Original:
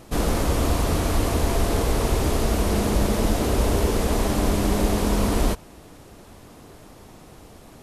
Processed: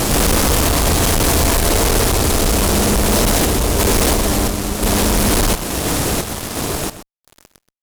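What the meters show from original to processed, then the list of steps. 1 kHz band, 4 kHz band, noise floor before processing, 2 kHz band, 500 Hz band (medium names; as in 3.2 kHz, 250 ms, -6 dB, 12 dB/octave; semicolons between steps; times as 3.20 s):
+8.0 dB, +13.0 dB, -47 dBFS, +11.0 dB, +6.5 dB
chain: peaking EQ 10 kHz +7.5 dB 2.5 oct; compression 2:1, threshold -31 dBFS, peak gain reduction 9 dB; random-step tremolo 2.9 Hz, depth 95%; fuzz box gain 47 dB, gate -54 dBFS; echo from a far wall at 22 m, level -12 dB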